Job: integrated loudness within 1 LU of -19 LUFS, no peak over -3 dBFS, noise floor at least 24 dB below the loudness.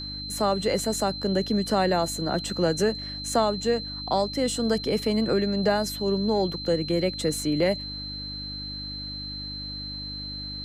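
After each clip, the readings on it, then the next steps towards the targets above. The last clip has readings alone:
hum 50 Hz; highest harmonic 300 Hz; hum level -38 dBFS; steady tone 4.1 kHz; tone level -34 dBFS; loudness -26.5 LUFS; peak level -11.0 dBFS; loudness target -19.0 LUFS
-> de-hum 50 Hz, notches 6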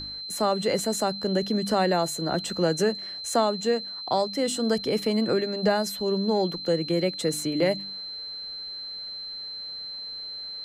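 hum not found; steady tone 4.1 kHz; tone level -34 dBFS
-> band-stop 4.1 kHz, Q 30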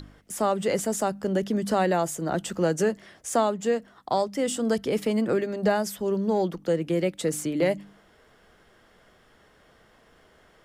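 steady tone not found; loudness -26.5 LUFS; peak level -11.5 dBFS; loudness target -19.0 LUFS
-> trim +7.5 dB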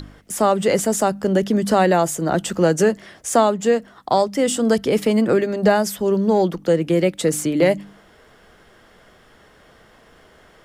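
loudness -19.0 LUFS; peak level -4.0 dBFS; noise floor -51 dBFS

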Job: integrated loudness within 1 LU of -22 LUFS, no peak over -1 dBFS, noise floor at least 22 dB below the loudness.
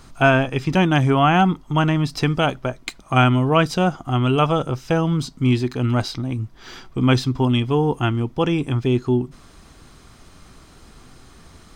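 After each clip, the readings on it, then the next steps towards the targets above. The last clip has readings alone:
loudness -19.5 LUFS; peak level -3.5 dBFS; loudness target -22.0 LUFS
-> trim -2.5 dB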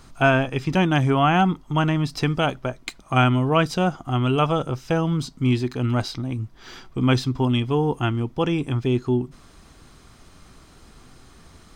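loudness -22.0 LUFS; peak level -6.0 dBFS; noise floor -50 dBFS

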